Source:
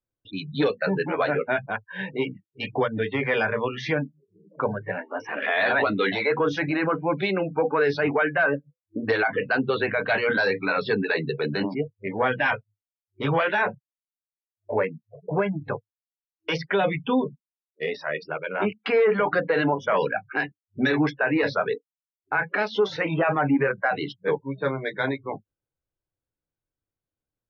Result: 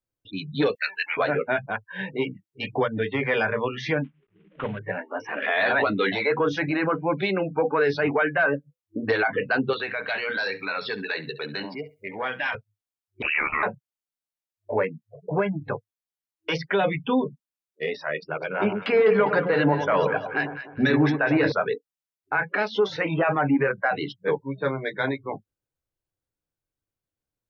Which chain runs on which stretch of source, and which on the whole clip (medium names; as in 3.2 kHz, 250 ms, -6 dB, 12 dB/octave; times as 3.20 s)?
0.75–1.17 s: resonant high-pass 2.2 kHz, resonance Q 2.8 + tilt EQ +2.5 dB/octave
4.04–4.79 s: CVSD coder 16 kbps + peaking EQ 710 Hz -6.5 dB 1.6 oct
9.73–12.55 s: tilt EQ +3 dB/octave + compression 1.5:1, threshold -34 dBFS + flutter echo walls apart 11.6 m, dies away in 0.25 s
13.22–13.63 s: ring modulator 37 Hz + frequency inversion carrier 2.8 kHz
18.20–21.52 s: gate -47 dBFS, range -9 dB + bass shelf 100 Hz +10.5 dB + echo whose repeats swap between lows and highs 101 ms, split 1.1 kHz, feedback 58%, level -6 dB
whole clip: none